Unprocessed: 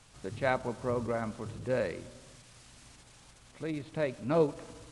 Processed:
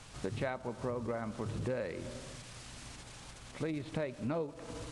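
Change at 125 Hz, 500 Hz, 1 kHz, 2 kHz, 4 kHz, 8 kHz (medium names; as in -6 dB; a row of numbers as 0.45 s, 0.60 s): -1.5 dB, -6.0 dB, -6.5 dB, -6.0 dB, +0.5 dB, +1.5 dB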